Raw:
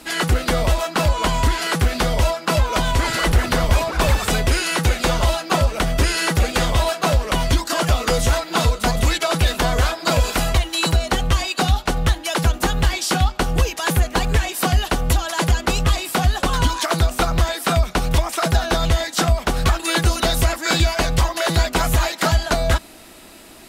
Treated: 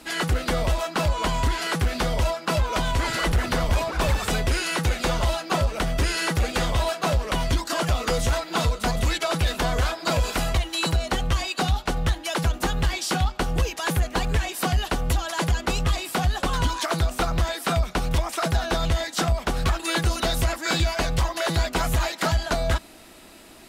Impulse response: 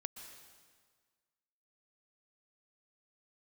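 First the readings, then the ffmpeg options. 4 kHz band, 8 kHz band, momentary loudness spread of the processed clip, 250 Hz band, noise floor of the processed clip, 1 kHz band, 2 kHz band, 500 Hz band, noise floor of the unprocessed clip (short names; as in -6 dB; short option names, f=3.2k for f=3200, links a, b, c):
-5.5 dB, -6.0 dB, 2 LU, -5.0 dB, -42 dBFS, -5.0 dB, -5.0 dB, -5.0 dB, -38 dBFS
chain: -af "highshelf=f=8.7k:g=-3.5,asoftclip=type=tanh:threshold=-8.5dB,volume=-4dB"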